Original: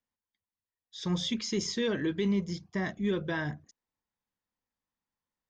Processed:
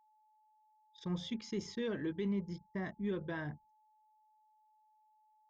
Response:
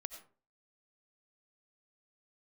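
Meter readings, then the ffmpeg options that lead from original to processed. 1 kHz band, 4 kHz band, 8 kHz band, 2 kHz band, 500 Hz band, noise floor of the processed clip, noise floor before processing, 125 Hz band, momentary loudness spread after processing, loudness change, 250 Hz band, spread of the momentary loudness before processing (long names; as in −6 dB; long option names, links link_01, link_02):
−7.5 dB, −13.5 dB, can't be measured, −9.5 dB, −7.0 dB, −71 dBFS, below −85 dBFS, −7.0 dB, 7 LU, −8.0 dB, −7.0 dB, 9 LU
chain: -af "anlmdn=0.158,highshelf=frequency=3500:gain=-11,aeval=exprs='val(0)+0.000891*sin(2*PI*860*n/s)':channel_layout=same,volume=-7dB"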